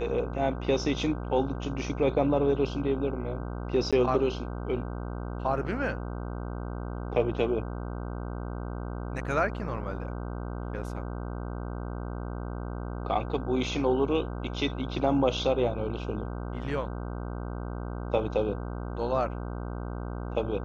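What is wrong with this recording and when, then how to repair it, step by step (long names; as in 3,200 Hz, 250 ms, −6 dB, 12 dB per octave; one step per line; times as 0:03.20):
mains buzz 60 Hz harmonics 26 −35 dBFS
0:03.91–0:03.93: drop-out 16 ms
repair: hum removal 60 Hz, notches 26
repair the gap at 0:03.91, 16 ms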